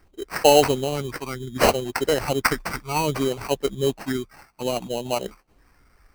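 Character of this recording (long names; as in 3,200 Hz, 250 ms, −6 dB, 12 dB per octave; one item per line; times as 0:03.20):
phaser sweep stages 8, 0.62 Hz, lowest notch 540–2,600 Hz
aliases and images of a low sample rate 3,500 Hz, jitter 0%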